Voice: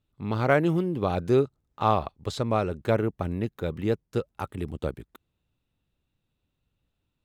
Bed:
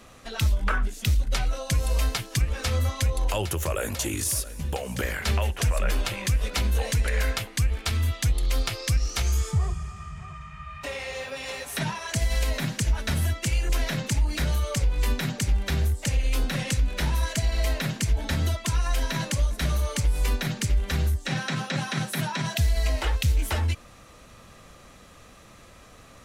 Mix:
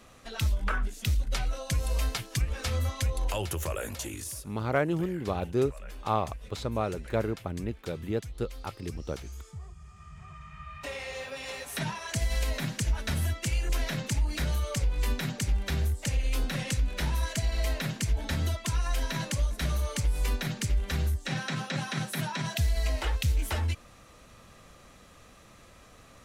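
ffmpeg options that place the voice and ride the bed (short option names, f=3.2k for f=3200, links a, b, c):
-filter_complex "[0:a]adelay=4250,volume=-5dB[a];[1:a]volume=10dB,afade=t=out:st=3.62:d=0.95:silence=0.199526,afade=t=in:st=9.74:d=0.87:silence=0.188365[b];[a][b]amix=inputs=2:normalize=0"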